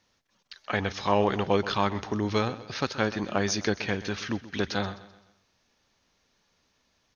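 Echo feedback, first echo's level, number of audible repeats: 43%, −16.0 dB, 3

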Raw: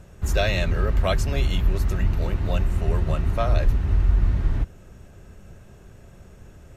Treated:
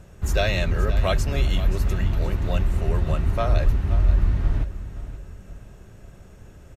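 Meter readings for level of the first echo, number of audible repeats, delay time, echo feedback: −13.5 dB, 3, 526 ms, 37%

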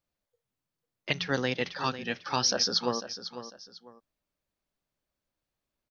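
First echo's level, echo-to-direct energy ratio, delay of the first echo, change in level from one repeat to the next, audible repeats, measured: −12.0 dB, −11.5 dB, 498 ms, −10.0 dB, 2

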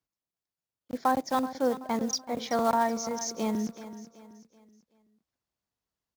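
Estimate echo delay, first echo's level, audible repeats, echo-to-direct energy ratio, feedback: 379 ms, −14.0 dB, 3, −13.5 dB, 39%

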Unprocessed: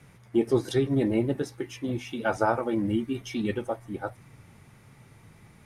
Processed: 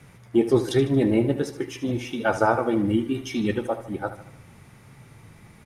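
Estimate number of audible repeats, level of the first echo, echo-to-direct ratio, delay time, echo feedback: 4, −13.0 dB, −11.5 dB, 76 ms, 51%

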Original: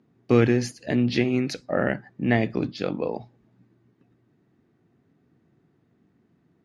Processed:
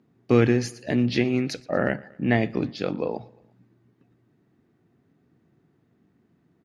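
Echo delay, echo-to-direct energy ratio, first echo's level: 117 ms, −22.0 dB, −23.5 dB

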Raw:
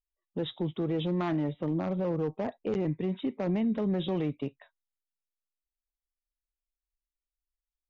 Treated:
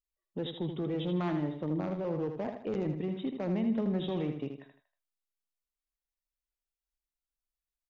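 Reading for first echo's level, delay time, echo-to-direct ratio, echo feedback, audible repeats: −7.0 dB, 79 ms, −6.5 dB, 38%, 4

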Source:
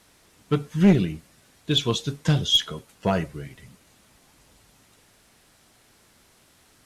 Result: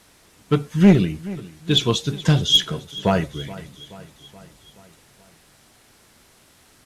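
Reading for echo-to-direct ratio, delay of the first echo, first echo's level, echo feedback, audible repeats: −16.5 dB, 426 ms, −18.5 dB, 59%, 4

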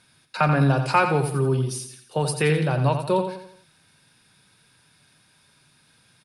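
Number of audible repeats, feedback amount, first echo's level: 4, 43%, −8.0 dB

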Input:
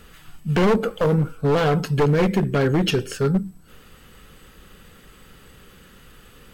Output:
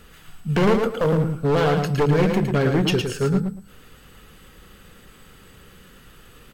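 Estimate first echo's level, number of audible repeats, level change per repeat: −5.5 dB, 2, −14.0 dB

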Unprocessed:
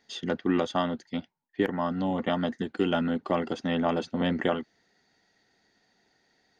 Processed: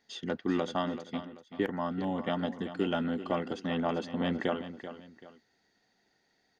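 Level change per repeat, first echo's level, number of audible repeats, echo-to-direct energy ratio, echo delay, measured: −9.5 dB, −12.0 dB, 2, −11.5 dB, 385 ms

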